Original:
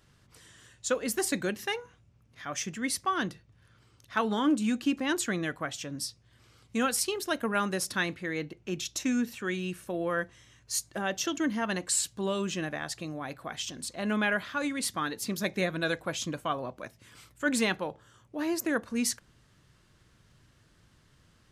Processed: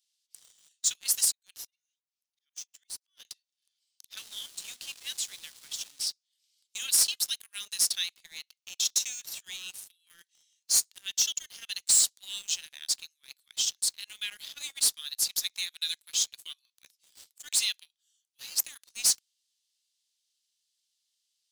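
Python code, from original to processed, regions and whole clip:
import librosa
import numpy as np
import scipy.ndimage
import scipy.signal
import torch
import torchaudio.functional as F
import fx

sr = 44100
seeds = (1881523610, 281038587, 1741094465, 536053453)

y = fx.chain(x, sr, fx.auto_swell(attack_ms=439.0),
    fx.tremolo_abs(hz=3.1), at=(1.23, 3.25))
y = fx.chain(y, sr, fx.delta_mod(bps=64000, step_db=-36.0),
    fx.high_shelf(hz=3400.0, db=-8.5), at=(4.17, 6.07))
y = scipy.signal.sosfilt(scipy.signal.cheby2(4, 80, 610.0, 'highpass', fs=sr, output='sos'), y)
y = fx.leveller(y, sr, passes=3)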